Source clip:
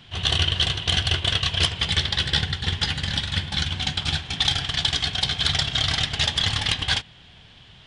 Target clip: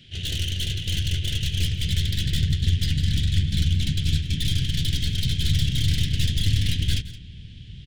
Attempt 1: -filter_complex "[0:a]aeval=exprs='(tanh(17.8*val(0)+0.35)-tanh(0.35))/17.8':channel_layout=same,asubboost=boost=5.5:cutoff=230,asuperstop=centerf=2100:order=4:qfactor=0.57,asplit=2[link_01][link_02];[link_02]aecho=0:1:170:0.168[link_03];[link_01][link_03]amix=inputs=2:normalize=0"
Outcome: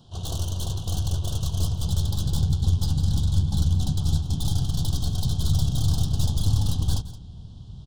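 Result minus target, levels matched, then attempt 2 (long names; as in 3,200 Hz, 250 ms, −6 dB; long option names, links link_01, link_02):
1,000 Hz band +19.0 dB
-filter_complex "[0:a]aeval=exprs='(tanh(17.8*val(0)+0.35)-tanh(0.35))/17.8':channel_layout=same,asubboost=boost=5.5:cutoff=230,asuperstop=centerf=960:order=4:qfactor=0.57,asplit=2[link_01][link_02];[link_02]aecho=0:1:170:0.168[link_03];[link_01][link_03]amix=inputs=2:normalize=0"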